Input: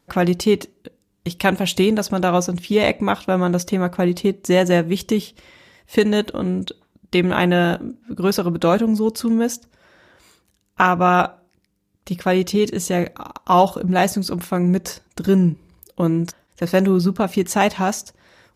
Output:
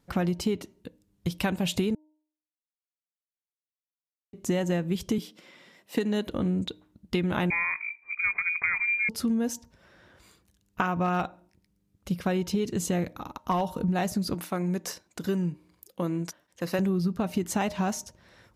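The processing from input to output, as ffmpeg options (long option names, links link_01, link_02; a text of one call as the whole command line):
ffmpeg -i in.wav -filter_complex "[0:a]asettb=1/sr,asplit=3[link_01][link_02][link_03];[link_01]atrim=end=5.184[link_04];[link_02]atrim=start=5.18:end=6.27,asetpts=PTS-STARTPTS,afade=type=in:duration=0.004:curve=qsin,afade=type=out:start_time=1.086:duration=0.004:curve=qsin,highpass=frequency=180:width=0.5412,highpass=frequency=180:width=1.3066[link_05];[link_03]atrim=start=6.266[link_06];[link_04][link_05]acrossfade=duration=0.004:curve1=hsin:curve2=qsin[link_07];[link_07][link_06]acrossfade=duration=0.004:curve1=qsin:curve2=hsin,asettb=1/sr,asplit=3[link_08][link_09][link_10];[link_08]atrim=end=7.504[link_11];[link_09]atrim=start=7.5:end=9.09,asetpts=PTS-STARTPTS,afade=type=in:duration=0.004:curve=qsin,afade=type=out:start_time=1.586:duration=0.004:curve=qsin,lowpass=frequency=2200:width_type=q:width=0.5098,lowpass=frequency=2200:width_type=q:width=0.6013,lowpass=frequency=2200:width_type=q:width=0.9,lowpass=frequency=2200:width_type=q:width=2.563,afreqshift=-2600[link_12];[link_10]atrim=start=9.086[link_13];[link_11][link_12]acrossfade=duration=0.004:curve1=hsin:curve2=qsin[link_14];[link_14][link_13]acrossfade=duration=0.004:curve1=qsin:curve2=hsin,asettb=1/sr,asplit=3[link_15][link_16][link_17];[link_15]atrim=end=10.944[link_18];[link_16]atrim=start=10.94:end=13.61,asetpts=PTS-STARTPTS,afade=type=in:duration=0.004:curve=qsin,afade=type=out:start_time=2.666:duration=0.004:curve=qsin,aeval=exprs='clip(val(0),-1,0.355)':channel_layout=same[link_19];[link_17]atrim=start=13.606[link_20];[link_18][link_19]acrossfade=duration=0.004:curve1=hsin:curve2=qsin[link_21];[link_21][link_20]acrossfade=duration=0.004:curve1=qsin:curve2=hsin,asettb=1/sr,asplit=3[link_22][link_23][link_24];[link_22]atrim=end=14.344[link_25];[link_23]atrim=start=14.34:end=16.79,asetpts=PTS-STARTPTS,afade=type=in:duration=0.004:curve=qsin,afade=type=out:start_time=2.446:duration=0.004:curve=qsin,highpass=frequency=480:poles=1[link_26];[link_24]atrim=start=16.786[link_27];[link_25][link_26]acrossfade=duration=0.004:curve1=hsin:curve2=qsin[link_28];[link_28][link_27]acrossfade=duration=0.004:curve1=qsin:curve2=hsin,asplit=3[link_29][link_30][link_31];[link_29]atrim=end=1.95,asetpts=PTS-STARTPTS,afade=type=out:start_time=1.946:duration=0.004:curve=hsin[link_32];[link_30]atrim=start=1.95:end=4.33,asetpts=PTS-STARTPTS,volume=0[link_33];[link_31]atrim=start=4.33,asetpts=PTS-STARTPTS,afade=type=in:duration=0.004:curve=hsin[link_34];[link_32][link_33][link_34]concat=n=3:v=0:a=1,bass=frequency=250:gain=6,treble=frequency=4000:gain=0,bandreject=frequency=307.1:width_type=h:width=4,bandreject=frequency=614.2:width_type=h:width=4,bandreject=frequency=921.3:width_type=h:width=4,acompressor=threshold=-18dB:ratio=6,volume=-5.5dB" out.wav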